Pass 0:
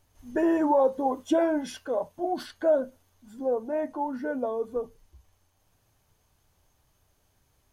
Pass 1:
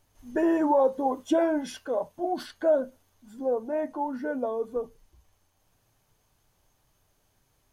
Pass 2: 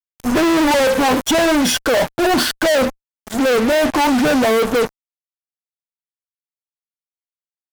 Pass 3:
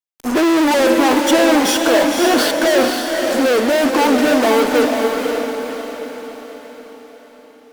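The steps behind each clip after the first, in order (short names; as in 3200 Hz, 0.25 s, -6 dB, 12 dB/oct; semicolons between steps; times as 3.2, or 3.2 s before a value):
bell 73 Hz -14 dB 0.3 oct
fuzz box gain 49 dB, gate -46 dBFS
resonant low shelf 210 Hz -9.5 dB, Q 1.5; diffused feedback echo 0.52 s, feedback 49%, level -3.5 dB; gain -1 dB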